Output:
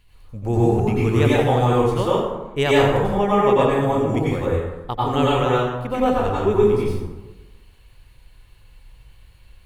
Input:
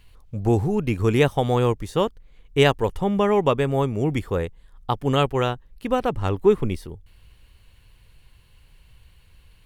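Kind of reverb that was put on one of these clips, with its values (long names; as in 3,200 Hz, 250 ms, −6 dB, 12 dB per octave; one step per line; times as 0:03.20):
dense smooth reverb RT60 1.1 s, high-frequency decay 0.55×, pre-delay 80 ms, DRR −7 dB
level −4.5 dB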